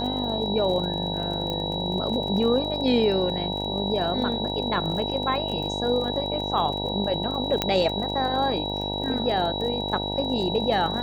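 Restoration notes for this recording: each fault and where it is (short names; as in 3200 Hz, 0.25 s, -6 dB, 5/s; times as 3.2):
buzz 50 Hz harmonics 19 -31 dBFS
crackle 35/s -32 dBFS
tone 3900 Hz -30 dBFS
1.5 pop -16 dBFS
7.62 pop -7 dBFS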